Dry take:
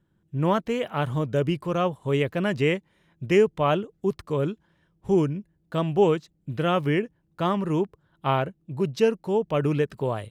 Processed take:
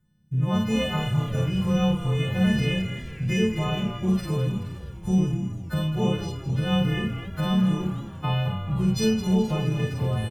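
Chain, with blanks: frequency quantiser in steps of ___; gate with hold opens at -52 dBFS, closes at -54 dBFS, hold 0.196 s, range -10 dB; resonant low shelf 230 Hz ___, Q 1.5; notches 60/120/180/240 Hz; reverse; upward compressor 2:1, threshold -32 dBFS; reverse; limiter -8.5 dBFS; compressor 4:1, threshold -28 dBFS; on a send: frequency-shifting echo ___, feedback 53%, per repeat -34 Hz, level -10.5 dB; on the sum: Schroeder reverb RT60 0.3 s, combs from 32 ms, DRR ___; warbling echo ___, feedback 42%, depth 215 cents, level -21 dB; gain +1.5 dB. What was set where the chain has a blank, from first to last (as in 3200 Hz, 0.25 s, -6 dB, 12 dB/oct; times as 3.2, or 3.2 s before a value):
3 st, +11.5 dB, 0.213 s, -1 dB, 0.466 s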